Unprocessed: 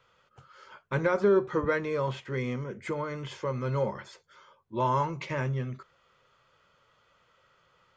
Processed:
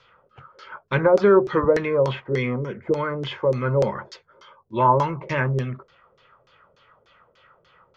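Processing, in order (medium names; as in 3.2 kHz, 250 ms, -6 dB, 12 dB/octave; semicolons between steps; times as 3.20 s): LFO low-pass saw down 3.4 Hz 380–5700 Hz; trim +6.5 dB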